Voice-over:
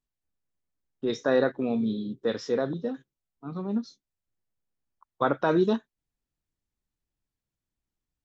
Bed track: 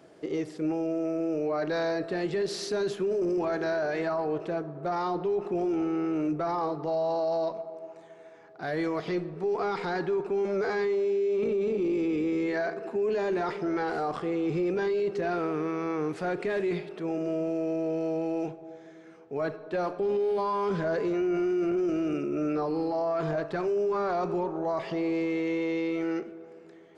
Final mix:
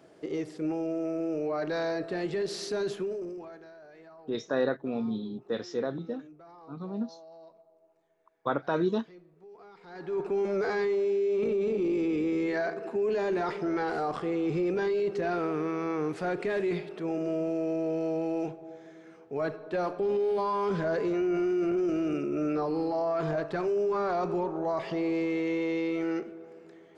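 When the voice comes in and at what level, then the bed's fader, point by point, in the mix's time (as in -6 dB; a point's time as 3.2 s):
3.25 s, -4.5 dB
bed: 2.97 s -2 dB
3.72 s -22.5 dB
9.8 s -22.5 dB
10.2 s -0.5 dB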